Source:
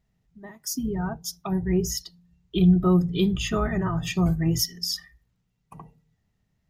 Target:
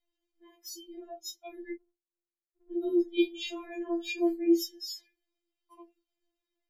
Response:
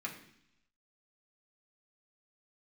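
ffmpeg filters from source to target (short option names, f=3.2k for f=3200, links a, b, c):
-filter_complex "[0:a]asettb=1/sr,asplit=3[a][b][c];[a]atrim=end=1.714[d];[b]atrim=start=1.71:end=2.72,asetpts=PTS-STARTPTS,afade=t=in:d=0.004:c=qsin,afade=t=out:st=1.006:d=0.004:c=qsin,asuperpass=centerf=180:order=20:qfactor=1.7[e];[c]atrim=start=2.716[f];[d][e]acrossfade=d=0.004:c1=hsin:c2=qsin[g];[g][f]acrossfade=d=0.004:c1=qsin:c2=hsin[h];[1:a]atrim=start_sample=2205,atrim=end_sample=3087,asetrate=79380,aresample=44100[i];[h][i]afir=irnorm=-1:irlink=0,afftfilt=real='re*4*eq(mod(b,16),0)':imag='im*4*eq(mod(b,16),0)':win_size=2048:overlap=0.75"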